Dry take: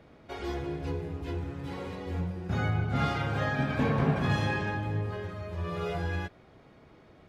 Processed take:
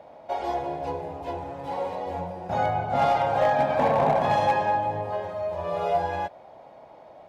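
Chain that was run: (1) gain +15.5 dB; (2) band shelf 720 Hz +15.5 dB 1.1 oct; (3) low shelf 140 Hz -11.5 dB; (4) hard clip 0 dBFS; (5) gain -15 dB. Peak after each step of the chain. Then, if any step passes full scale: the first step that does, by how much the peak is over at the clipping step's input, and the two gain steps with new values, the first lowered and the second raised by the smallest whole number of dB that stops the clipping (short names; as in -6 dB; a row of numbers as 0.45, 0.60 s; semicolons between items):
+2.5, +8.5, +6.5, 0.0, -15.0 dBFS; step 1, 6.5 dB; step 1 +8.5 dB, step 5 -8 dB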